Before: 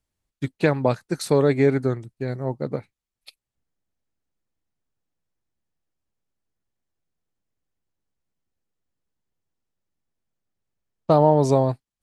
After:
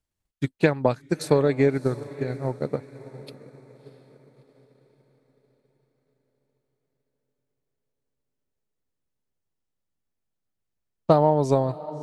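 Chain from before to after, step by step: echo that smears into a reverb 651 ms, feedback 44%, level -14.5 dB; transient shaper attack +5 dB, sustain -3 dB; trim -3.5 dB

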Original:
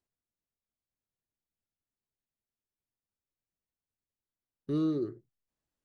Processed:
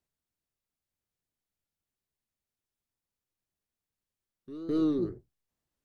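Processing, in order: octave divider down 1 oct, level -5 dB; pre-echo 211 ms -14 dB; wow and flutter 82 cents; trim +2 dB

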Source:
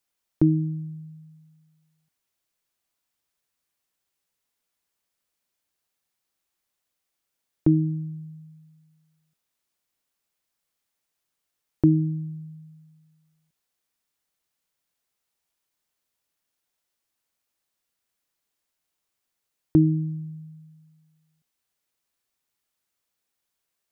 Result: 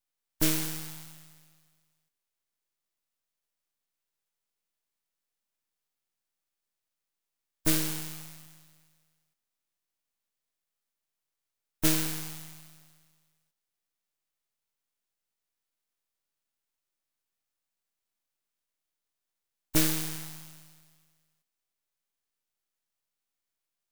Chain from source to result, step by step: formants flattened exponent 0.1; half-wave rectifier; trim -2.5 dB

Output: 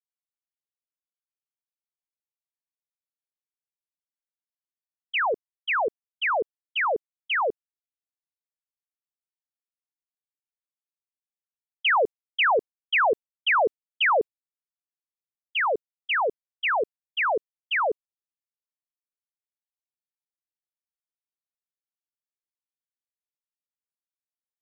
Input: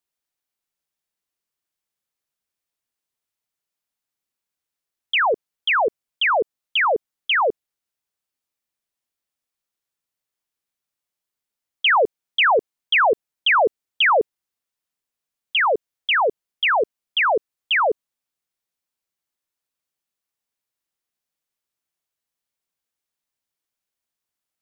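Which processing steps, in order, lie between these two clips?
expander -17 dBFS; trim -4.5 dB

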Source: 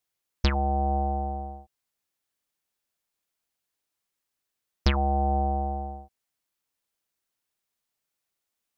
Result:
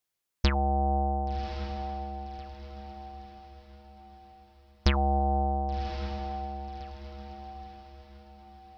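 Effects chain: 5.19–5.89 s: elliptic low-pass 3.5 kHz; on a send: echo that smears into a reverb 1118 ms, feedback 42%, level -9 dB; on the sum: trim -1 dB

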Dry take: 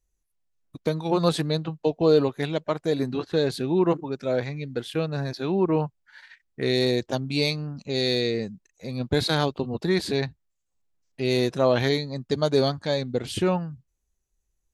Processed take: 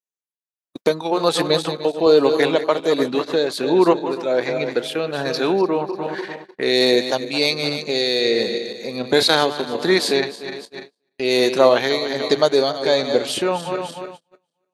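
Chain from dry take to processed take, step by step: backward echo that repeats 148 ms, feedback 62%, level -10.5 dB; high-pass 360 Hz 12 dB/octave; gate -48 dBFS, range -28 dB; in parallel at +1.5 dB: compression, threshold -35 dBFS, peak gain reduction 17.5 dB; on the sum: tremolo 1.3 Hz, depth 45%; 2.06–2.80 s: three bands compressed up and down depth 70%; trim +8 dB

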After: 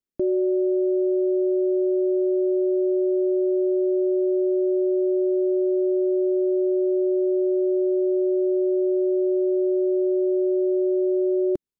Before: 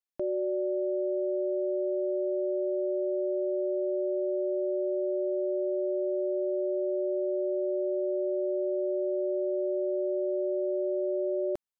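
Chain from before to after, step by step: resonant low shelf 500 Hz +11.5 dB, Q 1.5; trim -2 dB

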